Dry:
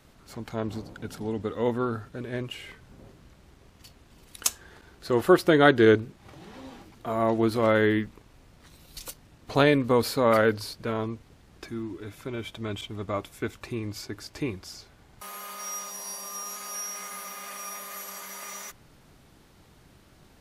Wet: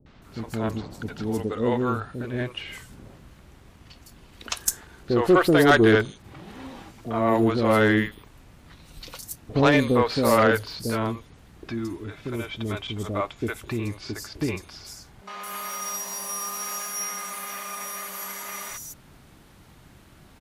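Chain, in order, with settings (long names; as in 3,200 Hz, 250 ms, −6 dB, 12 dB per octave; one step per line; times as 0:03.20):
0:15.47–0:16.82: converter with a step at zero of −45 dBFS
three-band delay without the direct sound lows, mids, highs 60/220 ms, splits 480/5,100 Hz
harmonic generator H 5 −16 dB, 8 −27 dB, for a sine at −5.5 dBFS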